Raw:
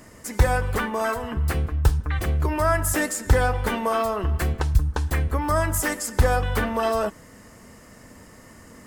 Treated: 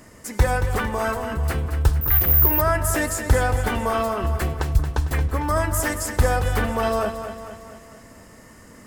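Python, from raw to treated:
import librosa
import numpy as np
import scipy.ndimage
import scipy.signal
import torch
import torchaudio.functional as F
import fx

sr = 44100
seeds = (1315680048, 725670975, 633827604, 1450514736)

y = fx.echo_feedback(x, sr, ms=226, feedback_pct=53, wet_db=-9.5)
y = fx.resample_bad(y, sr, factor=3, down='filtered', up='zero_stuff', at=(2.01, 2.61))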